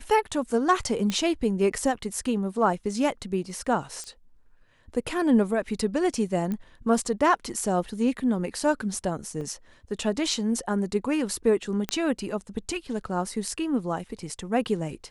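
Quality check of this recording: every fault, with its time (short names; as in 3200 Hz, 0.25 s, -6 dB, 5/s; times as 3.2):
1.1 pop -14 dBFS
4.04 pop -24 dBFS
6.52 pop -19 dBFS
9.41 gap 3.4 ms
11.89 pop -11 dBFS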